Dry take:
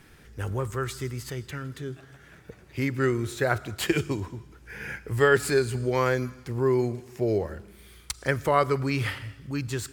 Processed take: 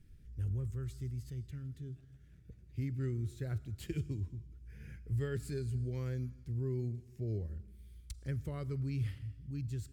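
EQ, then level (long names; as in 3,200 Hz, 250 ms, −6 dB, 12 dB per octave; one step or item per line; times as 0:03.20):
guitar amp tone stack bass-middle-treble 10-0-1
low-shelf EQ 340 Hz +7 dB
+1.0 dB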